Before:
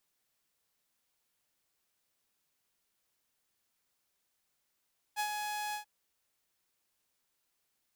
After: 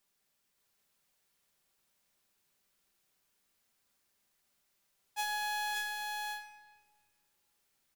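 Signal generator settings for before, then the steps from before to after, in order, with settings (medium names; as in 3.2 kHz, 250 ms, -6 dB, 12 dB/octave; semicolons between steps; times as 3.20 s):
ADSR saw 840 Hz, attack 38 ms, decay 77 ms, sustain -5 dB, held 0.58 s, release 106 ms -27.5 dBFS
on a send: delay 572 ms -3 dB; on the sum: simulated room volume 1800 m³, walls mixed, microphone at 1.2 m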